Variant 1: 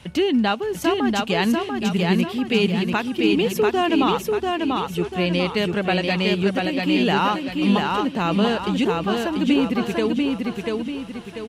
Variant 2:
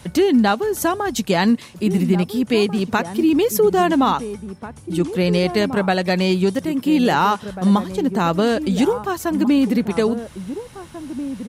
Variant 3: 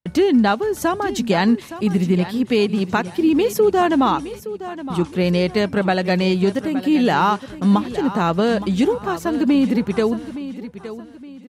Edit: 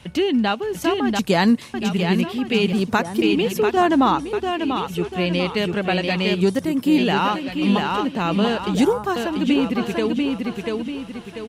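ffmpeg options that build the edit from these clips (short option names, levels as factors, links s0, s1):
-filter_complex "[1:a]asplit=4[s0][s1][s2][s3];[0:a]asplit=6[s4][s5][s6][s7][s8][s9];[s4]atrim=end=1.192[s10];[s0]atrim=start=1.188:end=1.742[s11];[s5]atrim=start=1.738:end=2.732[s12];[s1]atrim=start=2.728:end=3.222[s13];[s6]atrim=start=3.218:end=3.772[s14];[2:a]atrim=start=3.768:end=4.332[s15];[s7]atrim=start=4.328:end=6.412[s16];[s2]atrim=start=6.408:end=6.982[s17];[s8]atrim=start=6.978:end=8.752[s18];[s3]atrim=start=8.748:end=9.162[s19];[s9]atrim=start=9.158[s20];[s10][s11]acrossfade=d=0.004:c1=hsin:c2=hsin[s21];[s21][s12]acrossfade=d=0.004:c1=hsin:c2=hsin[s22];[s22][s13]acrossfade=d=0.004:c1=hsin:c2=hsin[s23];[s23][s14]acrossfade=d=0.004:c1=hsin:c2=hsin[s24];[s24][s15]acrossfade=d=0.004:c1=hsin:c2=hsin[s25];[s25][s16]acrossfade=d=0.004:c1=hsin:c2=hsin[s26];[s26][s17]acrossfade=d=0.004:c1=hsin:c2=hsin[s27];[s27][s18]acrossfade=d=0.004:c1=hsin:c2=hsin[s28];[s28][s19]acrossfade=d=0.004:c1=hsin:c2=hsin[s29];[s29][s20]acrossfade=d=0.004:c1=hsin:c2=hsin"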